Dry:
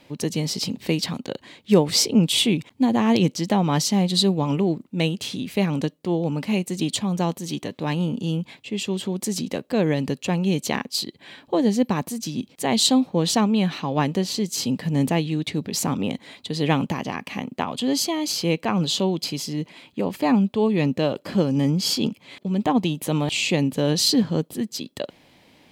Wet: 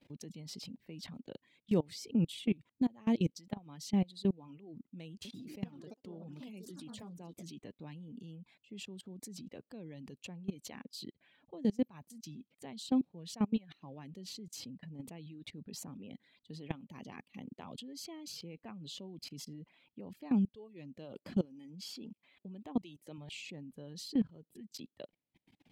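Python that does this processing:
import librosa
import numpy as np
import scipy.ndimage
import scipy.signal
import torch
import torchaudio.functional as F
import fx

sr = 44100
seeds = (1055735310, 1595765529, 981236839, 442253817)

y = fx.echo_pitch(x, sr, ms=146, semitones=3, count=3, db_per_echo=-6.0, at=(5.1, 7.7))
y = fx.peak_eq(y, sr, hz=130.0, db=-10.0, octaves=0.77, at=(21.45, 23.18))
y = fx.curve_eq(y, sr, hz=(220.0, 1100.0, 2500.0, 6800.0), db=(0, -8, -5, -8))
y = fx.level_steps(y, sr, step_db=19)
y = fx.dereverb_blind(y, sr, rt60_s=1.1)
y = F.gain(torch.from_numpy(y), -7.5).numpy()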